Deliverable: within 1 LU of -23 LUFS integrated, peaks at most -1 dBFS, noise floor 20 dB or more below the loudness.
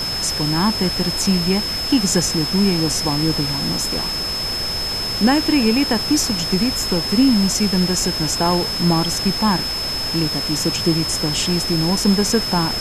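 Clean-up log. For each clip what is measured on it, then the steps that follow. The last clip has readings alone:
steady tone 5.2 kHz; tone level -22 dBFS; noise floor -24 dBFS; noise floor target -38 dBFS; loudness -18.0 LUFS; peak level -4.5 dBFS; loudness target -23.0 LUFS
-> band-stop 5.2 kHz, Q 30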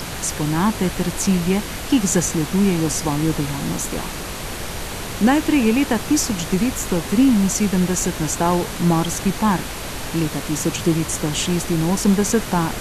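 steady tone not found; noise floor -30 dBFS; noise floor target -40 dBFS
-> noise print and reduce 10 dB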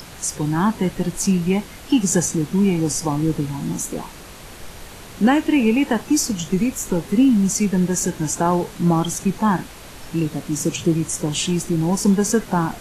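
noise floor -39 dBFS; noise floor target -40 dBFS
-> noise print and reduce 6 dB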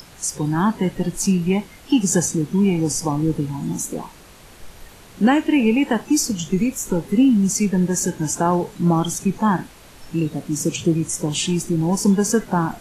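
noise floor -45 dBFS; loudness -20.0 LUFS; peak level -6.0 dBFS; loudness target -23.0 LUFS
-> trim -3 dB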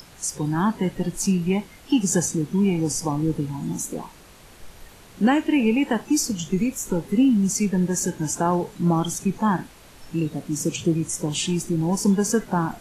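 loudness -23.0 LUFS; peak level -9.0 dBFS; noise floor -48 dBFS

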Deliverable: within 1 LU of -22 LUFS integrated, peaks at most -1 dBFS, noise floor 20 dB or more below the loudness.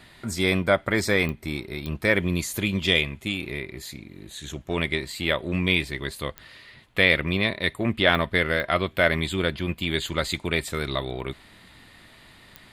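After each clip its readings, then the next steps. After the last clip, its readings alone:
clicks found 6; loudness -24.5 LUFS; peak level -4.0 dBFS; loudness target -22.0 LUFS
-> de-click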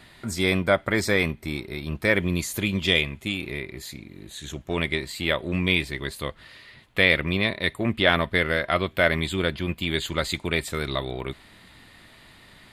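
clicks found 0; loudness -24.5 LUFS; peak level -4.0 dBFS; loudness target -22.0 LUFS
-> trim +2.5 dB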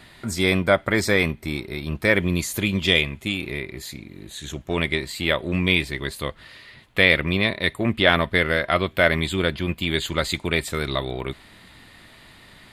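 loudness -22.0 LUFS; peak level -1.5 dBFS; noise floor -49 dBFS

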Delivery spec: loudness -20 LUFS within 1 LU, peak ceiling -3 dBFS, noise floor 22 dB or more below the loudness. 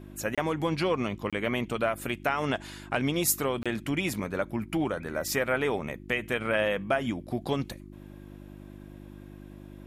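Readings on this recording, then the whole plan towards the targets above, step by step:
dropouts 3; longest dropout 26 ms; hum 50 Hz; highest harmonic 350 Hz; hum level -44 dBFS; loudness -29.5 LUFS; peak level -11.5 dBFS; loudness target -20.0 LUFS
-> interpolate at 0.35/1.30/3.63 s, 26 ms; de-hum 50 Hz, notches 7; trim +9.5 dB; peak limiter -3 dBFS

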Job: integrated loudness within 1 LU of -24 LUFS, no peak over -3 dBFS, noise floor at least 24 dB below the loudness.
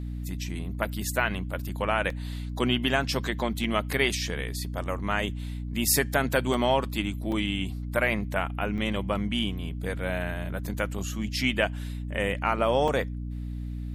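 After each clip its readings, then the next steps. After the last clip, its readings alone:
dropouts 8; longest dropout 2.8 ms; hum 60 Hz; highest harmonic 300 Hz; hum level -31 dBFS; loudness -28.5 LUFS; peak level -8.5 dBFS; loudness target -24.0 LUFS
-> interpolate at 0.85/2.10/3.64/6.54/7.32/8.78/10.66/12.88 s, 2.8 ms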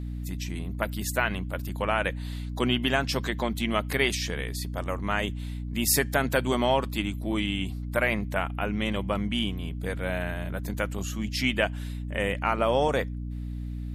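dropouts 0; hum 60 Hz; highest harmonic 300 Hz; hum level -31 dBFS
-> de-hum 60 Hz, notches 5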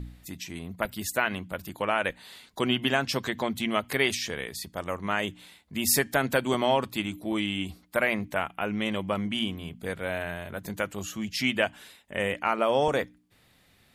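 hum not found; loudness -28.5 LUFS; peak level -8.5 dBFS; loudness target -24.0 LUFS
-> trim +4.5 dB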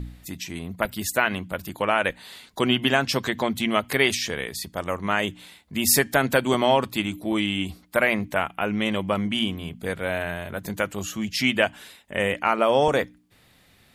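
loudness -24.0 LUFS; peak level -4.0 dBFS; noise floor -58 dBFS

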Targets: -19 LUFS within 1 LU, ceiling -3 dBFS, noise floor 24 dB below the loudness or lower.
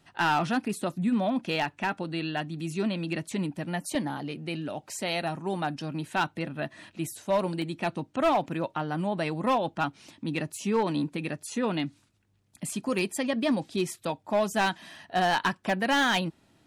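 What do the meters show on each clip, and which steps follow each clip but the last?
clipped samples 0.7%; clipping level -19.0 dBFS; dropouts 3; longest dropout 1.2 ms; loudness -29.5 LUFS; peak level -19.0 dBFS; loudness target -19.0 LUFS
-> clip repair -19 dBFS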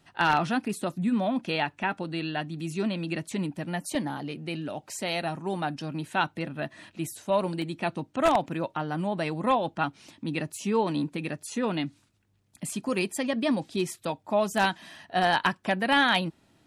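clipped samples 0.0%; dropouts 3; longest dropout 1.2 ms
-> interpolate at 3.95/7.62/10.56 s, 1.2 ms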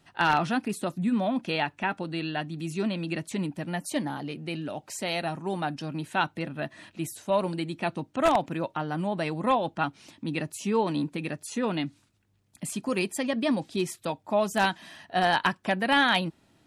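dropouts 0; loudness -29.0 LUFS; peak level -10.0 dBFS; loudness target -19.0 LUFS
-> trim +10 dB; peak limiter -3 dBFS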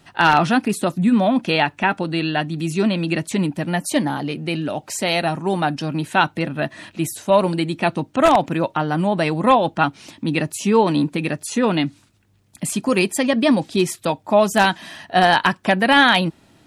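loudness -19.5 LUFS; peak level -3.0 dBFS; noise floor -56 dBFS

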